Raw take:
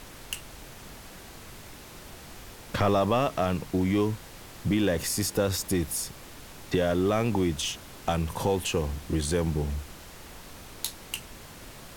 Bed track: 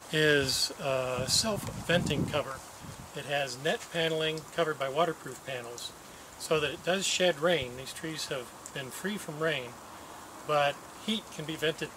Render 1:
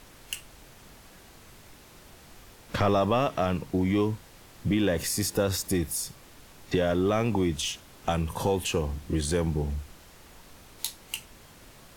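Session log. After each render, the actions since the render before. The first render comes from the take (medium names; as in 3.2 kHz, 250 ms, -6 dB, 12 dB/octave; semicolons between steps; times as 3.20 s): noise print and reduce 6 dB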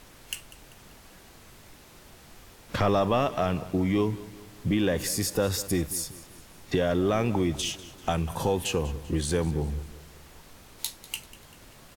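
feedback delay 195 ms, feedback 48%, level -17.5 dB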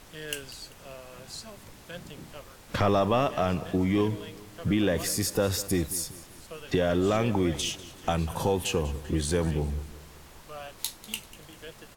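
add bed track -15 dB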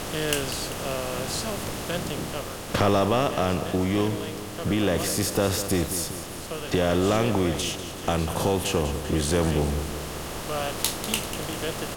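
spectral levelling over time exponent 0.6; gain riding within 4 dB 2 s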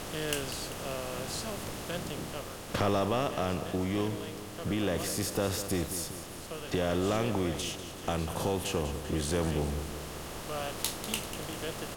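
trim -7 dB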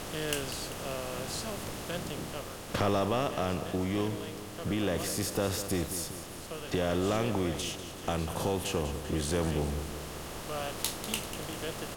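no audible change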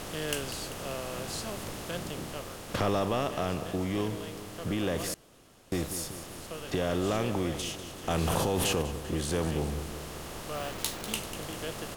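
5.14–5.72 s: room tone; 8.10–8.82 s: level flattener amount 100%; 10.55–11.13 s: send-on-delta sampling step -37.5 dBFS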